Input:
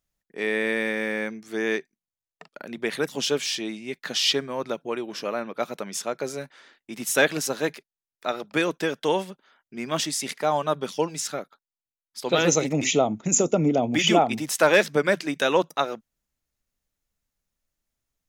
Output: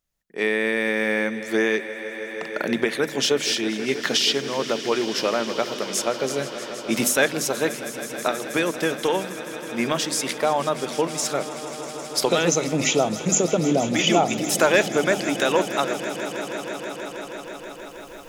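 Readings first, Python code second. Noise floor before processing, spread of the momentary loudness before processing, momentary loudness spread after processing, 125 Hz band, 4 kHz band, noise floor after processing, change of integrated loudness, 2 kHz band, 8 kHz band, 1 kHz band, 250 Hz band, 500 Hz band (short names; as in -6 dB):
under -85 dBFS, 13 LU, 12 LU, +1.5 dB, +3.0 dB, -38 dBFS, +1.5 dB, +2.5 dB, +3.0 dB, +2.0 dB, +3.0 dB, +2.5 dB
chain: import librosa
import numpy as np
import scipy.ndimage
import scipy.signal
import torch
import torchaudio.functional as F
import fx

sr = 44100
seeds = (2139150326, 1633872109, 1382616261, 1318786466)

y = fx.recorder_agc(x, sr, target_db=-11.0, rise_db_per_s=13.0, max_gain_db=30)
y = fx.hum_notches(y, sr, base_hz=50, count=6)
y = fx.echo_swell(y, sr, ms=160, loudest=5, wet_db=-17)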